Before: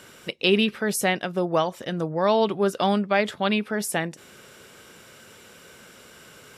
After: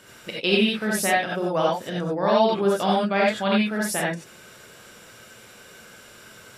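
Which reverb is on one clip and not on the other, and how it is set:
reverb whose tail is shaped and stops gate 110 ms rising, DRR −4.5 dB
level −4 dB

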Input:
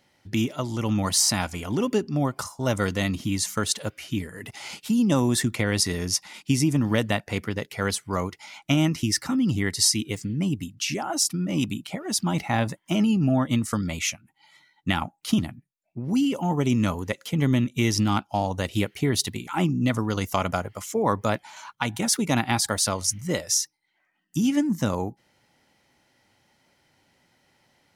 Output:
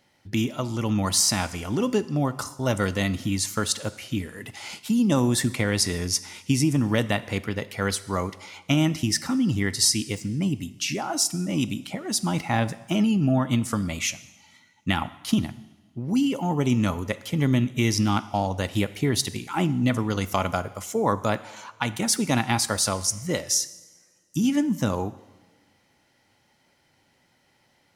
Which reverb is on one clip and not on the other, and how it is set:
coupled-rooms reverb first 0.99 s, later 2.5 s, from −18 dB, DRR 14 dB

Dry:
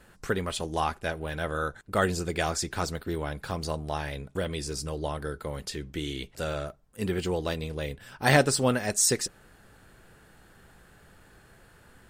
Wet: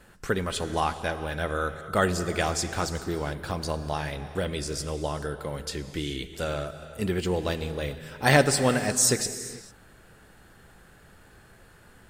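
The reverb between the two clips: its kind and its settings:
reverb whose tail is shaped and stops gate 470 ms flat, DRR 10.5 dB
level +1.5 dB

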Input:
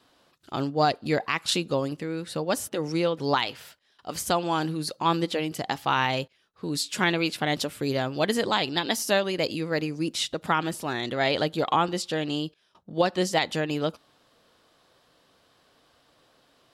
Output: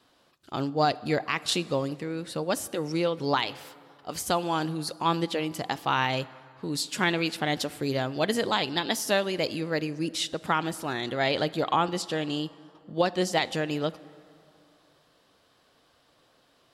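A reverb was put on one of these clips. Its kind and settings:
dense smooth reverb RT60 2.6 s, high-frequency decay 0.55×, DRR 18 dB
level −1.5 dB

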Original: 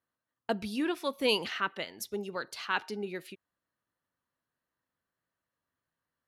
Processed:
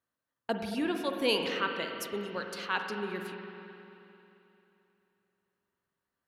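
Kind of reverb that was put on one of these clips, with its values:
spring reverb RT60 3.1 s, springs 44/55 ms, chirp 55 ms, DRR 4 dB
level −1 dB

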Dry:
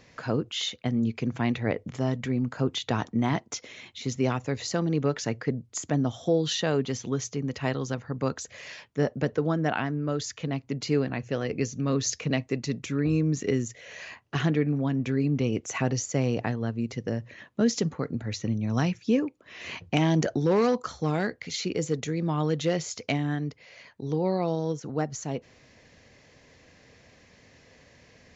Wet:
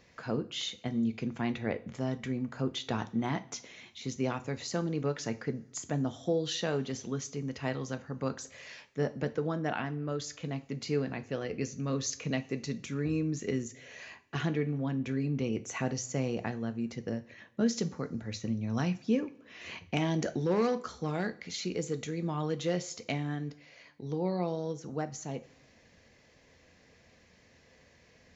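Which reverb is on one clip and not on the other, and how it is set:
coupled-rooms reverb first 0.33 s, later 1.8 s, from −22 dB, DRR 9.5 dB
level −6 dB

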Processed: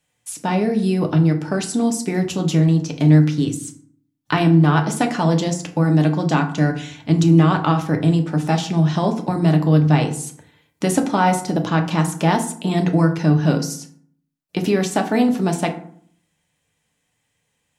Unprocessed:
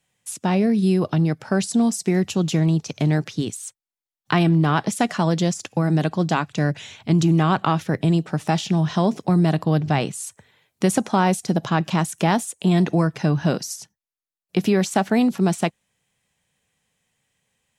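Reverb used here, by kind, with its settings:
feedback delay network reverb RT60 0.56 s, low-frequency decay 1.35×, high-frequency decay 0.55×, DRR 3.5 dB

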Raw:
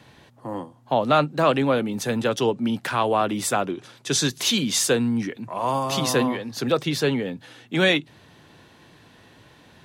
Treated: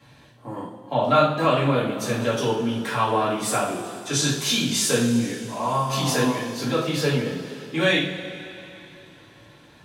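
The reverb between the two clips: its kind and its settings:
coupled-rooms reverb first 0.46 s, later 3.2 s, from −16 dB, DRR −9 dB
level −9 dB

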